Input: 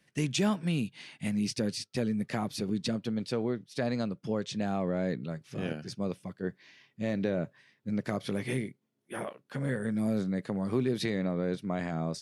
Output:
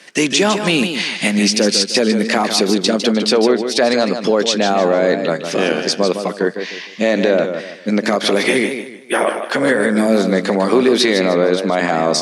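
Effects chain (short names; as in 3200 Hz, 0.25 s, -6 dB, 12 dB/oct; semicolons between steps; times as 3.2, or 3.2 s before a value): HPF 190 Hz 24 dB/oct; tone controls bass -14 dB, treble +6 dB; in parallel at -1 dB: compressor, threshold -44 dBFS, peak gain reduction 18 dB; on the sum: air absorption 61 m; maximiser +26 dB; warbling echo 0.153 s, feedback 32%, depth 97 cents, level -8 dB; gain -4 dB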